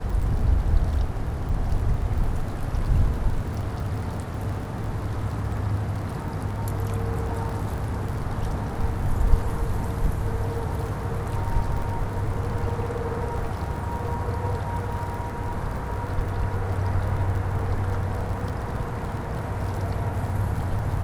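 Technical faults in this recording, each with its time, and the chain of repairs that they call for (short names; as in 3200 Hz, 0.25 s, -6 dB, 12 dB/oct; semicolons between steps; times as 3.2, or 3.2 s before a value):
crackle 36/s -32 dBFS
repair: de-click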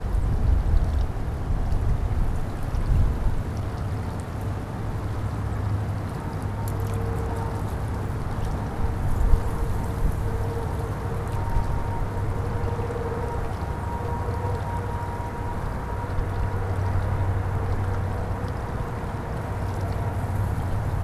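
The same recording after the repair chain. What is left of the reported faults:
none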